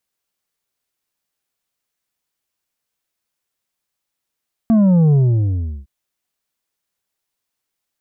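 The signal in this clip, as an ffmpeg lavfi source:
ffmpeg -f lavfi -i "aevalsrc='0.316*clip((1.16-t)/0.73,0,1)*tanh(2*sin(2*PI*230*1.16/log(65/230)*(exp(log(65/230)*t/1.16)-1)))/tanh(2)':duration=1.16:sample_rate=44100" out.wav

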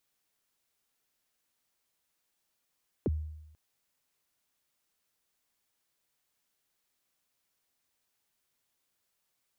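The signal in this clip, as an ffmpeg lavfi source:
ffmpeg -f lavfi -i "aevalsrc='0.0631*pow(10,-3*t/0.91)*sin(2*PI*(510*0.03/log(77/510)*(exp(log(77/510)*min(t,0.03)/0.03)-1)+77*max(t-0.03,0)))':duration=0.49:sample_rate=44100" out.wav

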